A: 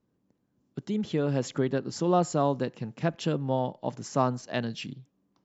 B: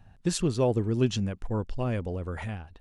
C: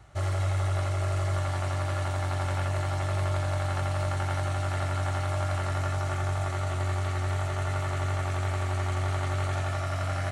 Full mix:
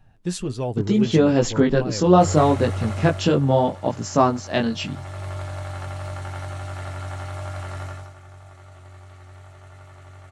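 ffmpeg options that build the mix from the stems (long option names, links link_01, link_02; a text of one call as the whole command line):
ffmpeg -i stem1.wav -i stem2.wav -i stem3.wav -filter_complex "[0:a]dynaudnorm=framelen=180:gausssize=7:maxgain=12dB,flanger=delay=17.5:depth=4.5:speed=0.74,volume=3dB[link_01];[1:a]flanger=delay=6.5:depth=4.6:regen=40:speed=1.6:shape=sinusoidal,volume=3dB[link_02];[2:a]adelay=2050,volume=8.5dB,afade=type=out:start_time=3.01:duration=0.32:silence=0.266073,afade=type=in:start_time=4.72:duration=0.63:silence=0.375837,afade=type=out:start_time=7.82:duration=0.32:silence=0.237137[link_03];[link_01][link_02][link_03]amix=inputs=3:normalize=0" out.wav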